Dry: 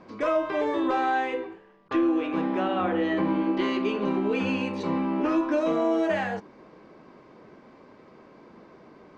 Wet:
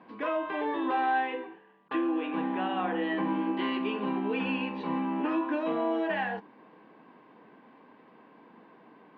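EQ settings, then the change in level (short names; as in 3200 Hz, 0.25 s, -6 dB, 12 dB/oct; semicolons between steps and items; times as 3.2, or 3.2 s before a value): speaker cabinet 300–2900 Hz, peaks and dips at 370 Hz -9 dB, 580 Hz -9 dB, 1300 Hz -10 dB, 2200 Hz -8 dB; bell 550 Hz -3.5 dB 1.4 oct; +3.5 dB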